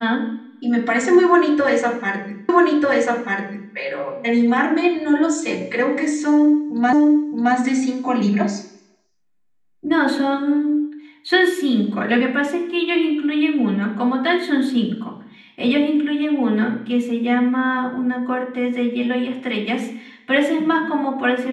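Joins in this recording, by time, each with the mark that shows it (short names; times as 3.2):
2.49 repeat of the last 1.24 s
6.93 repeat of the last 0.62 s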